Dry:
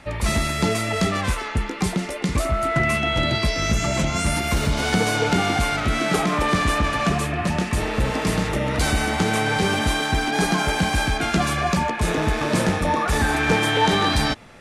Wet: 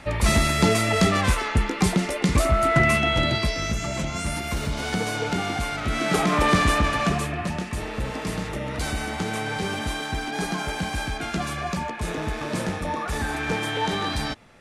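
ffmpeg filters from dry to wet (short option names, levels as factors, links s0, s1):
-af "volume=2.99,afade=t=out:st=2.79:d=0.97:silence=0.398107,afade=t=in:st=5.77:d=0.71:silence=0.421697,afade=t=out:st=6.48:d=1.16:silence=0.375837"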